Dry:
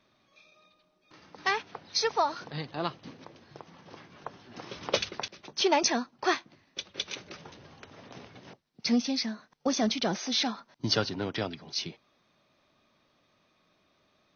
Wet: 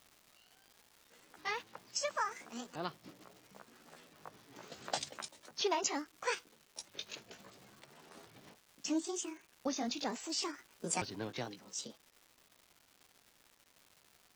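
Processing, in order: repeated pitch sweeps +9 st, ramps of 1.377 s; crackle 410/s -42 dBFS; gain -8 dB

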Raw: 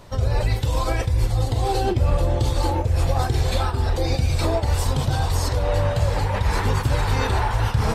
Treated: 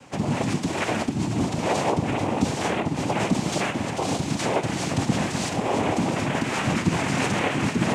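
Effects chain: noise vocoder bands 4; on a send: flutter echo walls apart 11.8 m, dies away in 0.3 s

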